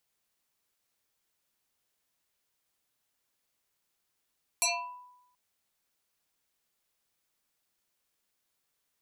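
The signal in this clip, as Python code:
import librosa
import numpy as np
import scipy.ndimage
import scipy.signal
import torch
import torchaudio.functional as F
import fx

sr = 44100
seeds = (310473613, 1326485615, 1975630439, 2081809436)

y = fx.fm2(sr, length_s=0.73, level_db=-22.0, carrier_hz=991.0, ratio=1.7, index=7.1, index_s=0.52, decay_s=0.89, shape='exponential')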